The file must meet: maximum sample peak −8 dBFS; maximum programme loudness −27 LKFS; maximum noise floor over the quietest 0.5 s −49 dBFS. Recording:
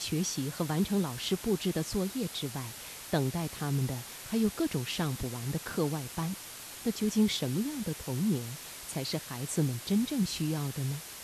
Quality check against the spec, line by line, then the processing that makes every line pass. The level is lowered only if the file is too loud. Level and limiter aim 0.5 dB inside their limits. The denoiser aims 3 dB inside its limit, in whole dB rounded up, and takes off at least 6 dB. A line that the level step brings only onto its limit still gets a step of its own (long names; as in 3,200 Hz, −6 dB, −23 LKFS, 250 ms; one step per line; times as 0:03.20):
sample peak −14.5 dBFS: in spec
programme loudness −32.5 LKFS: in spec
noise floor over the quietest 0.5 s −45 dBFS: out of spec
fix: broadband denoise 7 dB, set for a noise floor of −45 dBFS